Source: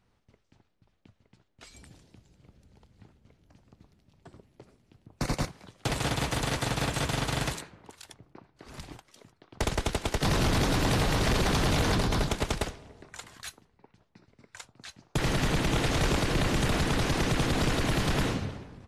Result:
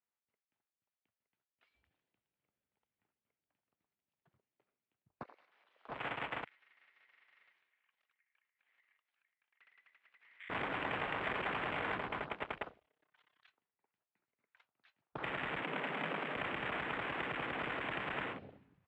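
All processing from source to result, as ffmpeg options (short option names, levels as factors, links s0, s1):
-filter_complex "[0:a]asettb=1/sr,asplit=3[s0][s1][s2];[s0]atrim=end=5.234[s3];[s1]atrim=start=5.23:end=5.89,asetpts=PTS-STARTPTS,afade=t=in:d=0.004:c=qsin,afade=t=out:st=0.656:d=0.004:c=qsin,aeval=exprs='val(0)+0.5*0.00794*sgn(val(0))':c=same,highpass=440,acompressor=threshold=0.00708:ratio=4:attack=3.2:release=140:knee=1:detection=peak[s4];[s2]atrim=start=5.886[s5];[s3][s4]acrossfade=d=0.004:c1=hsin:c2=qsin[s6];[s6][s5]acrossfade=d=0.004:c1=qsin:c2=hsin,asettb=1/sr,asplit=3[s7][s8][s9];[s7]atrim=end=6.444[s10];[s8]atrim=start=6.44:end=10.5,asetpts=PTS-STARTPTS,afade=t=in:d=0.004:c=qsin,afade=t=out:st=4.056:d=0.004:c=qsin,acompressor=threshold=0.002:ratio=2:attack=3.2:release=140:knee=1:detection=peak,aeval=exprs='val(0)*sin(2*PI*2000*n/s)':c=same[s11];[s9]atrim=start=10.496[s12];[s10][s11]acrossfade=d=0.004:c1=hsin:c2=qsin[s13];[s13][s12]acrossfade=d=0.004:c1=qsin:c2=hsin,asettb=1/sr,asplit=3[s14][s15][s16];[s14]atrim=end=12.794[s17];[s15]atrim=start=12.79:end=13.48,asetpts=PTS-STARTPTS,afade=t=in:d=0.004:c=qsin,afade=t=out:st=0.686:d=0.004:c=qsin,equalizer=f=3300:w=5:g=6.5,aecho=1:1:6.6:0.57,atrim=end_sample=30429,tremolo=f=33:d=0.919[s18];[s16]atrim=start=13.476[s19];[s17][s18]acrossfade=d=0.004:c1=hsin:c2=qsin[s20];[s20][s19]acrossfade=d=0.004:c1=qsin:c2=hsin,asettb=1/sr,asplit=3[s21][s22][s23];[s21]atrim=end=15.644[s24];[s22]atrim=start=15.64:end=16.36,asetpts=PTS-STARTPTS,afade=t=in:d=0.004:c=qsin,afade=t=out:st=0.716:d=0.004:c=qsin,aeval=exprs='if(lt(val(0),0),0.708*val(0),val(0))':c=same,afreqshift=130[s25];[s23]atrim=start=16.356[s26];[s24][s25]acrossfade=d=0.004:c1=hsin:c2=qsin[s27];[s27][s26]acrossfade=d=0.004:c1=qsin:c2=hsin,lowpass=f=2900:w=0.5412,lowpass=f=2900:w=1.3066,afwtdn=0.0158,highpass=f=1400:p=1,volume=0.794"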